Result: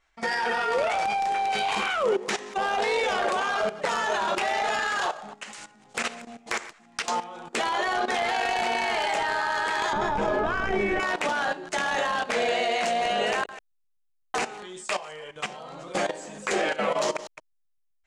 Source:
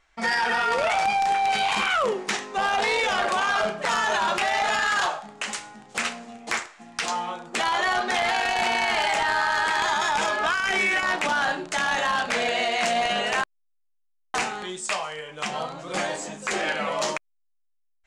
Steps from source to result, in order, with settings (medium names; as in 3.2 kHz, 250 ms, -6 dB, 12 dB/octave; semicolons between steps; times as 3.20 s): chunks repeated in reverse 127 ms, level -13.5 dB; 9.93–11.00 s: tilt EQ -4.5 dB/octave; level held to a coarse grid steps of 14 dB; dynamic bell 450 Hz, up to +7 dB, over -46 dBFS, Q 1.1